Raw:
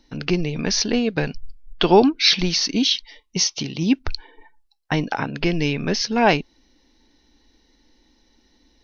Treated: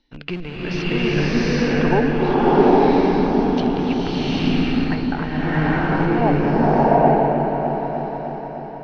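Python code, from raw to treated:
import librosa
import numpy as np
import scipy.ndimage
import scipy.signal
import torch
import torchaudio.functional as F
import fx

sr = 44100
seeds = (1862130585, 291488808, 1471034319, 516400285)

p1 = fx.schmitt(x, sr, flips_db=-23.5)
p2 = x + (p1 * 10.0 ** (-5.0 / 20.0))
p3 = fx.filter_lfo_lowpass(p2, sr, shape='saw_down', hz=0.28, low_hz=550.0, high_hz=3500.0, q=1.6)
p4 = fx.echo_opening(p3, sr, ms=303, hz=750, octaves=1, feedback_pct=70, wet_db=-6)
p5 = fx.rev_bloom(p4, sr, seeds[0], attack_ms=800, drr_db=-10.0)
y = p5 * 10.0 ** (-9.5 / 20.0)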